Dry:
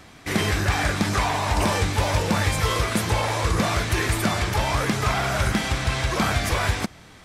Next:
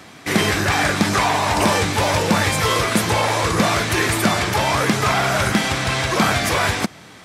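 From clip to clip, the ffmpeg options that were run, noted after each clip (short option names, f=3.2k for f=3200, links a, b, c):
-af "highpass=130,volume=6dB"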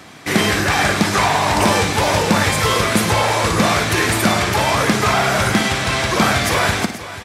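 -af "aecho=1:1:56|104|487:0.299|0.211|0.2,volume=1.5dB"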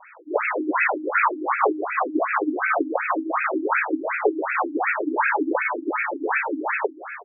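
-af "afreqshift=210,afftfilt=real='re*between(b*sr/1024,220*pow(1900/220,0.5+0.5*sin(2*PI*2.7*pts/sr))/1.41,220*pow(1900/220,0.5+0.5*sin(2*PI*2.7*pts/sr))*1.41)':imag='im*between(b*sr/1024,220*pow(1900/220,0.5+0.5*sin(2*PI*2.7*pts/sr))/1.41,220*pow(1900/220,0.5+0.5*sin(2*PI*2.7*pts/sr))*1.41)':win_size=1024:overlap=0.75"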